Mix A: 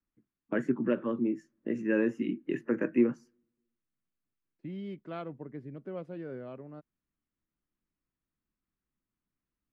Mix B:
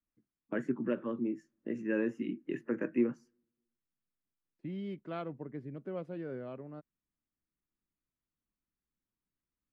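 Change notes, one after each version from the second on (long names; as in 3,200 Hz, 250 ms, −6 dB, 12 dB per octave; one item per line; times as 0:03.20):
first voice −4.5 dB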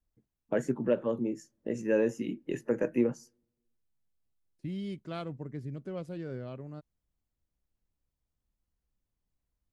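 first voice: add flat-topped bell 630 Hz +9.5 dB 1.3 octaves
master: remove three-way crossover with the lows and the highs turned down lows −15 dB, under 170 Hz, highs −21 dB, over 2,900 Hz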